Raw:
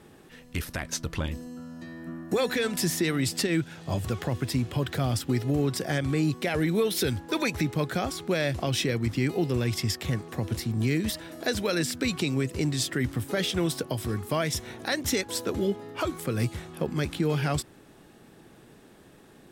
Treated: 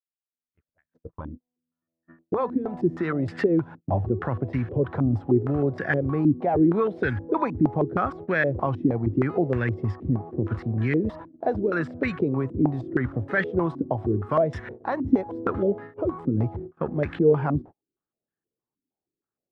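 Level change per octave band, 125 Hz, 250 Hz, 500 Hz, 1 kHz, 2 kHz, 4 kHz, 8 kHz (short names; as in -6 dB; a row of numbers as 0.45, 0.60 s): +1.5 dB, +4.0 dB, +4.5 dB, +6.0 dB, +1.5 dB, under -15 dB, under -30 dB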